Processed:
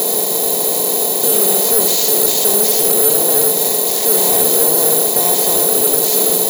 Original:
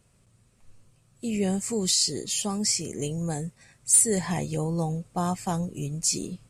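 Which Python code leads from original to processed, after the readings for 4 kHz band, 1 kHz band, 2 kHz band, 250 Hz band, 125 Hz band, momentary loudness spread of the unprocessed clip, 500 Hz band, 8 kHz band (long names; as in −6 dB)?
+11.5 dB, +13.0 dB, +13.0 dB, +3.5 dB, −3.5 dB, 13 LU, +16.5 dB, +13.0 dB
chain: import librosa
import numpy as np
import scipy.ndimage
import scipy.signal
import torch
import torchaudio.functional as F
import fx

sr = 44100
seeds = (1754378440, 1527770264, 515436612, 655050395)

y = fx.bin_compress(x, sr, power=0.2)
y = y + 10.0 ** (-5.0 / 20.0) * np.pad(y, (int(81 * sr / 1000.0), 0))[:len(y)]
y = np.clip(y, -10.0 ** (-13.0 / 20.0), 10.0 ** (-13.0 / 20.0))
y = fx.cabinet(y, sr, low_hz=260.0, low_slope=12, high_hz=4500.0, hz=(320.0, 450.0, 640.0, 1100.0, 1600.0, 3800.0), db=(5, 8, 9, 6, -7, 7))
y = fx.notch(y, sr, hz=1200.0, q=5.4)
y = (np.kron(y[::4], np.eye(4)[0]) * 4)[:len(y)]
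y = 10.0 ** (-3.5 / 20.0) * np.tanh(y / 10.0 ** (-3.5 / 20.0))
y = y * 10.0 ** (2.0 / 20.0)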